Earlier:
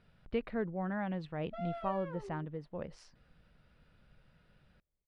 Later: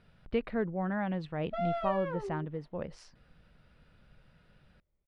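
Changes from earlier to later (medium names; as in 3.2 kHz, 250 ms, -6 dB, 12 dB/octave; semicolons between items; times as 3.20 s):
speech +3.5 dB; background +8.5 dB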